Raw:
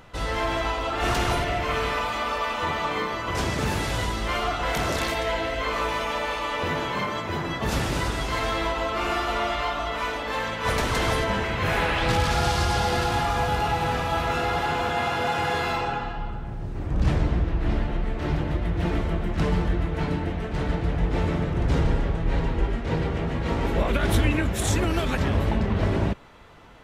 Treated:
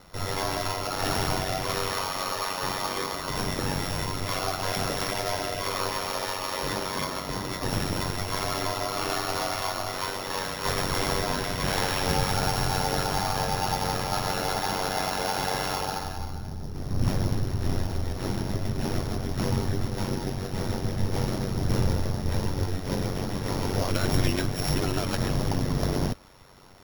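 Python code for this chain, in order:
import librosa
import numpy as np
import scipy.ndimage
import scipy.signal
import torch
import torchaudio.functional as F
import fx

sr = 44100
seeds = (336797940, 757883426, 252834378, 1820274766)

y = np.r_[np.sort(x[:len(x) // 8 * 8].reshape(-1, 8), axis=1).ravel(), x[len(x) // 8 * 8:]]
y = y * np.sin(2.0 * np.pi * 47.0 * np.arange(len(y)) / sr)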